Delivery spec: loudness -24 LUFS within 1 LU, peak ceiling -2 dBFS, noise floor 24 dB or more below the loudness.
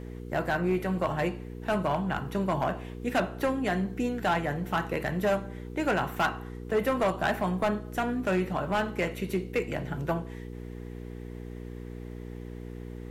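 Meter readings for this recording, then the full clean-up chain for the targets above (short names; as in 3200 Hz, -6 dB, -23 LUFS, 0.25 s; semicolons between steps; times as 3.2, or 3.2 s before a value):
clipped 1.2%; flat tops at -20.0 dBFS; hum 60 Hz; harmonics up to 480 Hz; hum level -38 dBFS; loudness -29.5 LUFS; peak -20.0 dBFS; loudness target -24.0 LUFS
-> clip repair -20 dBFS; de-hum 60 Hz, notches 8; gain +5.5 dB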